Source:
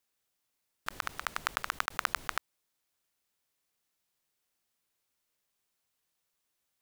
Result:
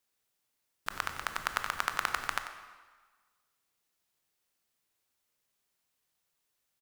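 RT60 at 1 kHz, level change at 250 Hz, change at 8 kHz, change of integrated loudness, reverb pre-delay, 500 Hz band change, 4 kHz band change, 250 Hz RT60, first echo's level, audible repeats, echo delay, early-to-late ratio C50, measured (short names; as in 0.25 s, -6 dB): 1.5 s, +1.0 dB, +1.0 dB, +1.0 dB, 19 ms, +1.0 dB, +0.5 dB, 1.3 s, -12.0 dB, 1, 92 ms, 7.5 dB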